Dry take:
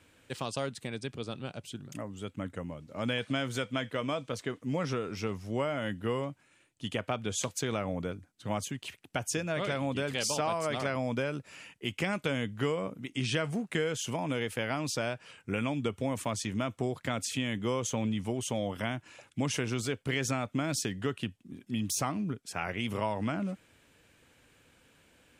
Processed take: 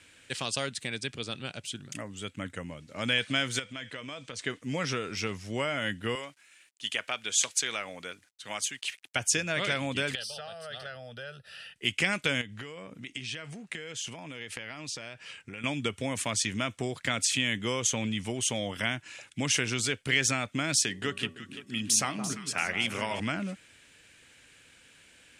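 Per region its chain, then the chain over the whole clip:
0:03.59–0:04.42: low-pass filter 9,700 Hz 24 dB per octave + downward compressor 4 to 1, threshold −39 dBFS
0:06.15–0:09.16: high-pass filter 900 Hz 6 dB per octave + bit-depth reduction 12 bits, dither none
0:10.15–0:11.76: downward compressor 2 to 1, threshold −43 dBFS + phaser with its sweep stopped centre 1,500 Hz, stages 8
0:12.41–0:15.64: notch filter 1,500 Hz, Q 21 + downward compressor 12 to 1, threshold −38 dBFS + high-shelf EQ 11,000 Hz −11.5 dB
0:20.84–0:23.20: low-shelf EQ 95 Hz −10.5 dB + hum removal 81.24 Hz, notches 14 + delay that swaps between a low-pass and a high-pass 170 ms, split 1,200 Hz, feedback 64%, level −8 dB
whole clip: Chebyshev low-pass filter 12,000 Hz, order 2; flat-topped bell 3,900 Hz +9.5 dB 3 octaves

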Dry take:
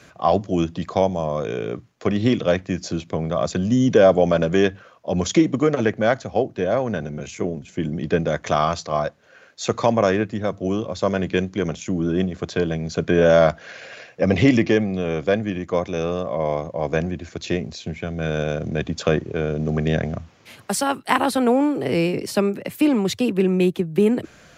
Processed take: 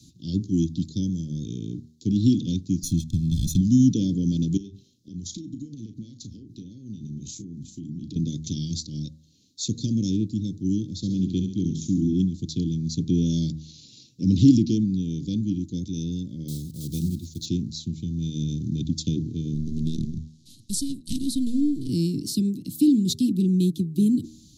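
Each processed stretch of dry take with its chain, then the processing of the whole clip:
0:02.83–0:03.61: lower of the sound and its delayed copy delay 0.32 ms + comb filter 1.2 ms, depth 96%
0:04.57–0:08.16: downward compressor 16 to 1, threshold −30 dBFS + double-tracking delay 35 ms −11 dB
0:10.95–0:12.13: high-shelf EQ 6,200 Hz −6 dB + flutter between parallel walls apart 11.7 metres, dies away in 0.53 s
0:16.48–0:17.47: one scale factor per block 5 bits + notch filter 280 Hz, Q 6.5
0:19.54–0:21.89: gain on one half-wave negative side −12 dB + linear-phase brick-wall low-pass 12,000 Hz
whole clip: Chebyshev band-stop filter 300–3,800 Hz, order 4; hum removal 78.32 Hz, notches 13; level +1.5 dB

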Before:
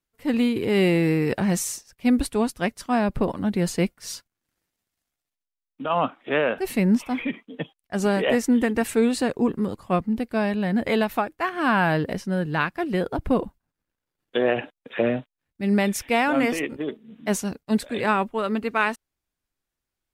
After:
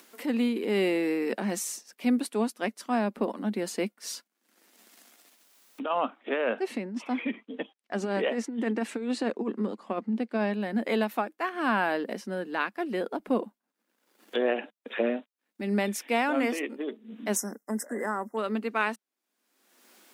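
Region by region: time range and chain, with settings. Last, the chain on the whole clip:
0:06.20–0:10.54: high-frequency loss of the air 74 metres + compressor whose output falls as the input rises −22 dBFS, ratio −0.5
0:17.36–0:18.37: linear-phase brick-wall band-stop 2,100–5,000 Hz + downward compressor 2.5 to 1, threshold −23 dBFS + high-shelf EQ 3,600 Hz +9.5 dB
whole clip: elliptic high-pass filter 210 Hz, stop band 40 dB; upward compression, threshold −26 dBFS; level −4.5 dB

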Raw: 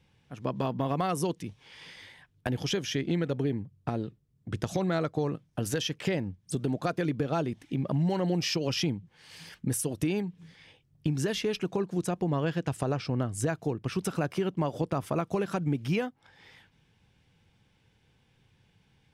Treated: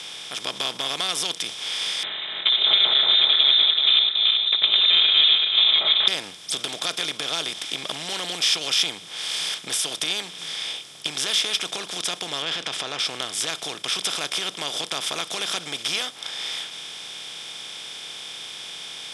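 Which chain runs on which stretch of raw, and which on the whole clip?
0:02.03–0:06.08: feedback delay that plays each chunk backwards 190 ms, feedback 48%, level −1.5 dB + comb filter 4.4 ms, depth 70% + voice inversion scrambler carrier 3,800 Hz
0:12.42–0:12.99: low-pass filter 2,700 Hz + transient designer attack −5 dB, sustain +7 dB
whole clip: compressor on every frequency bin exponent 0.4; meter weighting curve ITU-R 468; level −5.5 dB

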